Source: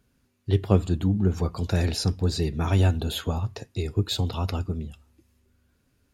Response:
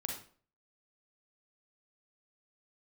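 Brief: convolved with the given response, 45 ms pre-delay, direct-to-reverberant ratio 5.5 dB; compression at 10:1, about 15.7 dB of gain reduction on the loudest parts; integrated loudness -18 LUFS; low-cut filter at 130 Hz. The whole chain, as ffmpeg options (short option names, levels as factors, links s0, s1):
-filter_complex "[0:a]highpass=130,acompressor=threshold=0.0282:ratio=10,asplit=2[s0][s1];[1:a]atrim=start_sample=2205,adelay=45[s2];[s1][s2]afir=irnorm=-1:irlink=0,volume=0.501[s3];[s0][s3]amix=inputs=2:normalize=0,volume=7.5"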